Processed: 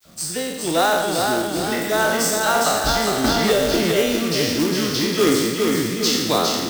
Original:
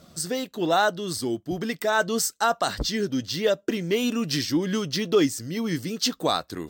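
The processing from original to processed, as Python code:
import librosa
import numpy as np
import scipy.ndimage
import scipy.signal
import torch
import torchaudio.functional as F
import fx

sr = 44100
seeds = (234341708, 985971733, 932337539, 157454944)

y = fx.spec_trails(x, sr, decay_s=1.17)
y = fx.dispersion(y, sr, late='lows', ms=55.0, hz=2000.0)
y = fx.quant_companded(y, sr, bits=4)
y = fx.echo_feedback(y, sr, ms=407, feedback_pct=49, wet_db=-4.0)
y = fx.band_squash(y, sr, depth_pct=100, at=(3.24, 3.92))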